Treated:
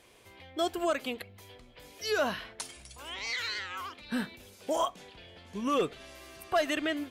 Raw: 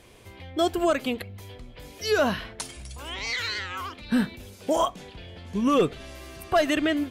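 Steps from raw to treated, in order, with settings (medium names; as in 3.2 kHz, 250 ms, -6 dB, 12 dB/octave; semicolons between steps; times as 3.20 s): bass shelf 260 Hz -10.5 dB; trim -4.5 dB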